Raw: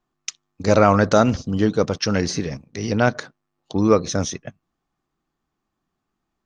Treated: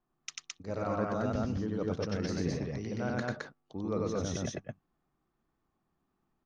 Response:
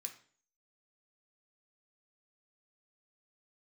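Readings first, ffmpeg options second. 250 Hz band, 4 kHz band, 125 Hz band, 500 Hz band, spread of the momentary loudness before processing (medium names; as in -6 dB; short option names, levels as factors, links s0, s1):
-13.0 dB, -15.0 dB, -12.0 dB, -15.0 dB, 18 LU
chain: -af "highshelf=f=2700:g=-11,areverse,acompressor=threshold=0.0355:ratio=6,areverse,aecho=1:1:93.29|215.7:0.891|0.891,volume=0.596"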